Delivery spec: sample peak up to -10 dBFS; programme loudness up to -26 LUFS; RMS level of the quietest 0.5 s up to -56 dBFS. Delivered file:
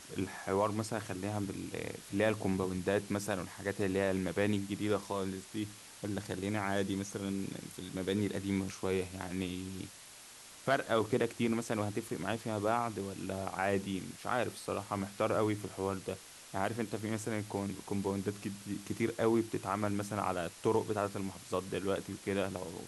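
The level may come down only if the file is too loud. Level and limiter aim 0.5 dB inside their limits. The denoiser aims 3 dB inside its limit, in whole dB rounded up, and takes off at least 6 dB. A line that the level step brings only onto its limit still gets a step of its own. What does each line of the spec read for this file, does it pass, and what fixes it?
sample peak -15.5 dBFS: pass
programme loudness -35.5 LUFS: pass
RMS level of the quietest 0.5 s -53 dBFS: fail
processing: noise reduction 6 dB, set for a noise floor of -53 dBFS

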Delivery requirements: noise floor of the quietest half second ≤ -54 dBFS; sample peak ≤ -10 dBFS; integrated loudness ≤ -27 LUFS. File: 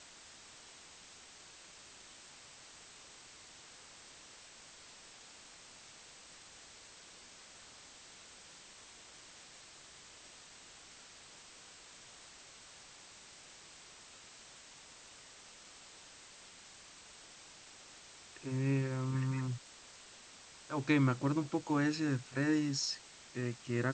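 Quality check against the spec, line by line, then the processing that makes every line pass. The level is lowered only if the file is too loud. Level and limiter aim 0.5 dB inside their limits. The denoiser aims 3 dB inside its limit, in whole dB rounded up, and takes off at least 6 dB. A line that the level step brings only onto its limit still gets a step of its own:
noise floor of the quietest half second -56 dBFS: pass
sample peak -16.5 dBFS: pass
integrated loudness -35.0 LUFS: pass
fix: none needed

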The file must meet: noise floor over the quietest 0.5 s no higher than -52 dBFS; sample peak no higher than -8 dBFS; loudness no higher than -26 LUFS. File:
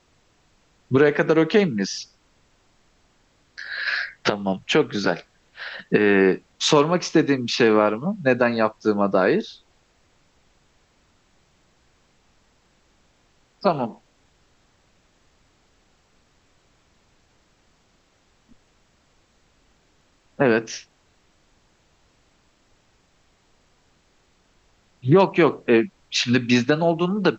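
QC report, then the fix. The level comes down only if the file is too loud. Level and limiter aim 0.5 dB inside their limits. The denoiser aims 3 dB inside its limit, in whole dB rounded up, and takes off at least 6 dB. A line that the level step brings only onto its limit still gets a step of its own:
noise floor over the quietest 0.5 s -62 dBFS: pass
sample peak -5.5 dBFS: fail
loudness -20.5 LUFS: fail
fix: trim -6 dB

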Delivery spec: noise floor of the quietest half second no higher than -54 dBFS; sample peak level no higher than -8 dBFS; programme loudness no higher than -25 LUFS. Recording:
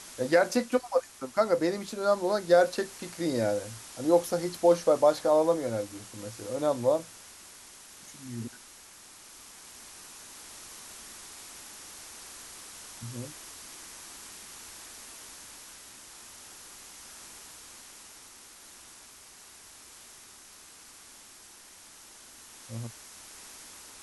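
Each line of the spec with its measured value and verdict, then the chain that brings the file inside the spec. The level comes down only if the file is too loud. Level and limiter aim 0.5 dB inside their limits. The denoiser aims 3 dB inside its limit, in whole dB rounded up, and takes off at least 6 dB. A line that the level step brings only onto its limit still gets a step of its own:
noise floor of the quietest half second -52 dBFS: fail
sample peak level -10.0 dBFS: pass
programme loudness -28.0 LUFS: pass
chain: noise reduction 6 dB, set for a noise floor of -52 dBFS

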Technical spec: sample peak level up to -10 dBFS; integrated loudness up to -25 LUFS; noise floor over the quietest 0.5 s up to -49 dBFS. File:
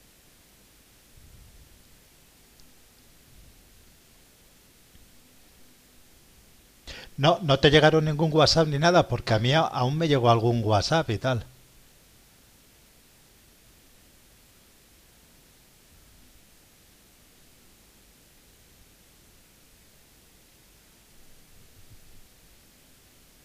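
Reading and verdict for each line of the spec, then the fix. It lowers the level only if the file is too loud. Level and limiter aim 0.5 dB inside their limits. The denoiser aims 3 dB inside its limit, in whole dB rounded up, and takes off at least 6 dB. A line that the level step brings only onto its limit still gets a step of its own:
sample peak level -5.5 dBFS: fail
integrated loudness -22.0 LUFS: fail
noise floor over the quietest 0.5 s -57 dBFS: pass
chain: trim -3.5 dB; peak limiter -10.5 dBFS

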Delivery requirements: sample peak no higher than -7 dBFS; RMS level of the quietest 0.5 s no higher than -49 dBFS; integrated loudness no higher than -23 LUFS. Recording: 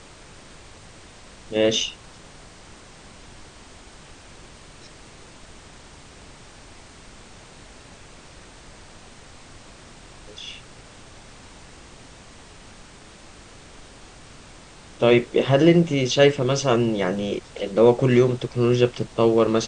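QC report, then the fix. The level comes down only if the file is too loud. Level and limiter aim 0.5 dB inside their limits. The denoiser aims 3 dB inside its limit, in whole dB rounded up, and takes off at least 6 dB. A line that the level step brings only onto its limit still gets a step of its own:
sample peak -3.5 dBFS: fail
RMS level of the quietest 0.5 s -45 dBFS: fail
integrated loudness -20.0 LUFS: fail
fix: noise reduction 6 dB, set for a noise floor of -45 dBFS; trim -3.5 dB; peak limiter -7.5 dBFS

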